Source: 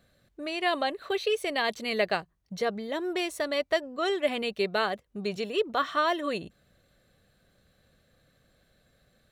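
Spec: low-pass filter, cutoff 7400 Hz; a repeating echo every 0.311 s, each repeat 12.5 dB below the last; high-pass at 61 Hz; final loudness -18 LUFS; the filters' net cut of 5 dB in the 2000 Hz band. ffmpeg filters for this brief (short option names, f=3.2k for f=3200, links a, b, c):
-af "highpass=61,lowpass=7.4k,equalizer=f=2k:t=o:g=-6.5,aecho=1:1:311|622|933:0.237|0.0569|0.0137,volume=12.5dB"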